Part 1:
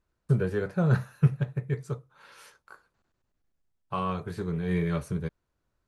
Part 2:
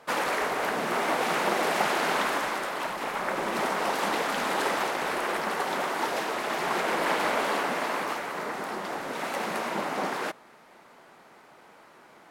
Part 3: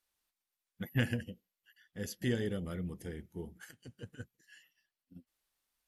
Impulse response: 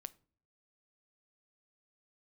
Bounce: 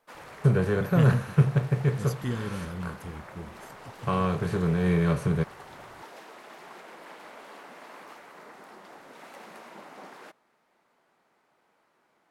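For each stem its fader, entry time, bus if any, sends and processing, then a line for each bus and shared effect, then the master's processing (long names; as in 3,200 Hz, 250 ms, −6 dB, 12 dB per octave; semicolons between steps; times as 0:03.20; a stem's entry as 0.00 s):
+0.5 dB, 0.15 s, no send, compressor on every frequency bin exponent 0.6
−18.0 dB, 0.00 s, no send, speech leveller within 3 dB 0.5 s
−3.5 dB, 0.00 s, no send, bass and treble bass +9 dB, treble +5 dB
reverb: not used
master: no processing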